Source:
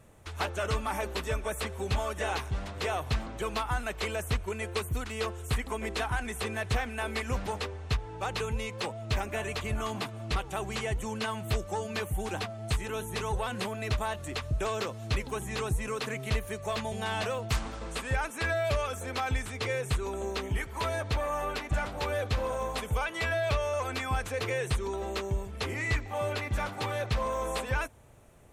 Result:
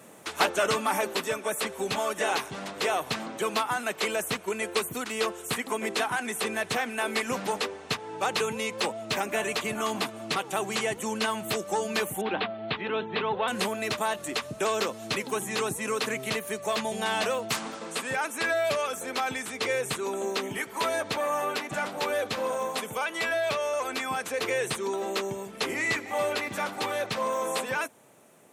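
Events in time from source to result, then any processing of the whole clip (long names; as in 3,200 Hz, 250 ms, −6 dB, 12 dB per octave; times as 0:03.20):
0:12.21–0:13.48: Butterworth low-pass 3,900 Hz 48 dB per octave
0:25.67–0:26.09: delay throw 280 ms, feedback 45%, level −14.5 dB
whole clip: high-pass filter 180 Hz 24 dB per octave; high-shelf EQ 6,100 Hz +5 dB; speech leveller 2 s; level +4 dB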